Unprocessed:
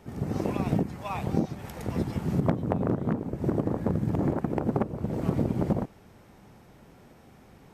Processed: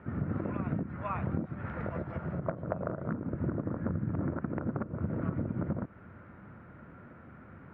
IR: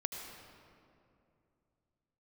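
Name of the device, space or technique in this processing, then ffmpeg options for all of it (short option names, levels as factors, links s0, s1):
bass amplifier: -filter_complex "[0:a]acompressor=threshold=0.0251:ratio=6,highpass=67,equalizer=f=87:t=q:w=4:g=5,equalizer=f=420:t=q:w=4:g=-6,equalizer=f=800:t=q:w=4:g=-9,equalizer=f=1400:t=q:w=4:g=9,lowpass=f=2000:w=0.5412,lowpass=f=2000:w=1.3066,asettb=1/sr,asplit=3[s0][s1][s2];[s0]atrim=end=1.864[s3];[s1]atrim=start=1.86:end=3.09,asetpts=PTS-STARTPTS,afade=t=in:d=0.004:c=qsin,afade=t=out:st=1.226:d=0.004:c=qsin,equalizer=f=100:t=o:w=0.67:g=-6,equalizer=f=250:t=o:w=0.67:g=-9,equalizer=f=630:t=o:w=0.67:g=8,equalizer=f=6300:t=o:w=0.67:g=9[s4];[s2]atrim=start=3.086[s5];[s3][s4]acrossfade=d=0.004:c1=hsin:c2=qsin[s6];[s6][s5]acrossfade=d=0.004:c1=qsin:c2=hsin,volume=1.41"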